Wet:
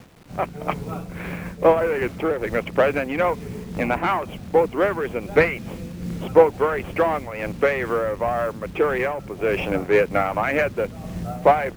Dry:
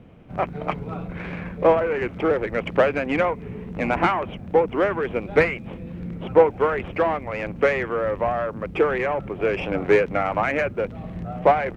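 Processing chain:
bit reduction 8 bits
amplitude modulation by smooth noise, depth 65%
level +3.5 dB

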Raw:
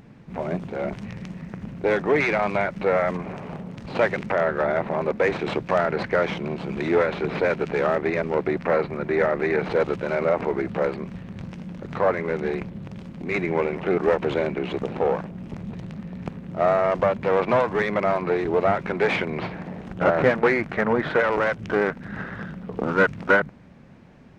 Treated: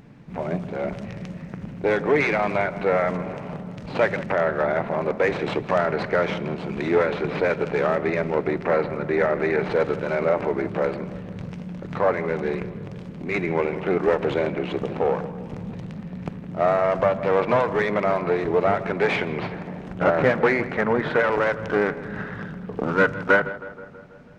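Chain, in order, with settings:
tape delay 161 ms, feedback 68%, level −14 dB, low-pass 2,200 Hz
on a send at −16 dB: convolution reverb RT60 0.75 s, pre-delay 7 ms

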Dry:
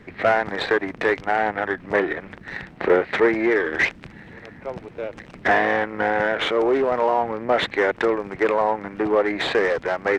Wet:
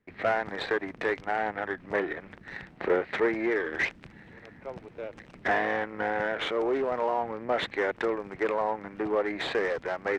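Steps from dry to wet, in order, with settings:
noise gate with hold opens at −38 dBFS
level −8 dB

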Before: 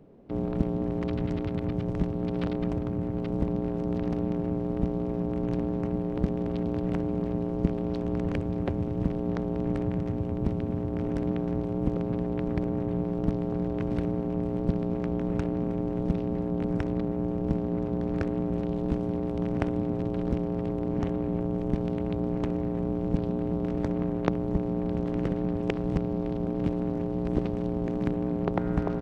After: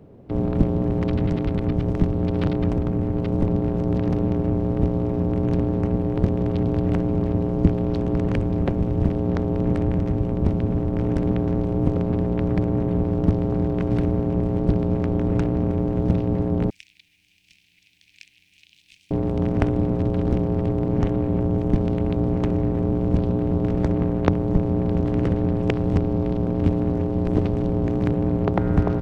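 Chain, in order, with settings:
sub-octave generator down 1 octave, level −1 dB
0:16.70–0:19.11: elliptic high-pass filter 2,400 Hz, stop band 50 dB
level +5.5 dB

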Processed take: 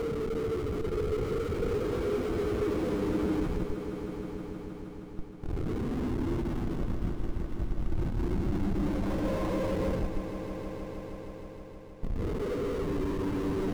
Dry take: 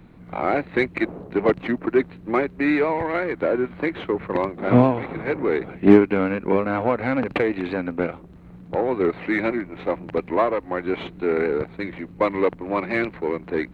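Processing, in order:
reversed piece by piece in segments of 204 ms
in parallel at −2.5 dB: compressor whose output falls as the input rises −29 dBFS, ratio −1
on the sum: extreme stretch with random phases 16×, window 0.10 s, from 0:11.46
comparator with hysteresis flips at −21.5 dBFS
on a send: echo that builds up and dies away 157 ms, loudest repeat 5, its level −12 dB
on the sum: every bin expanded away from the loudest bin 1.5 to 1
level −8.5 dB

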